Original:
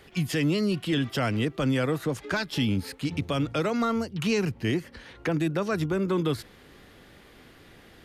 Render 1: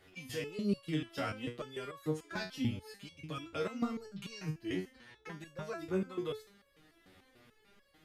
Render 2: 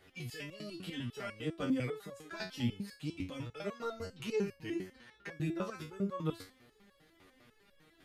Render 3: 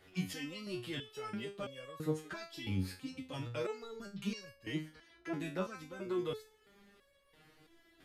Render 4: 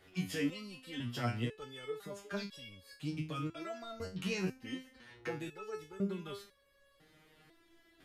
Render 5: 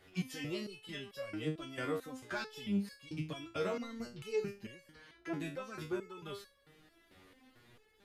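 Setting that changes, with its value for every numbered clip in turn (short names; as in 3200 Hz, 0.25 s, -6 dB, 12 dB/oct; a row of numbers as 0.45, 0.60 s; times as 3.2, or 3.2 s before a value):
stepped resonator, rate: 6.8, 10, 3, 2, 4.5 Hz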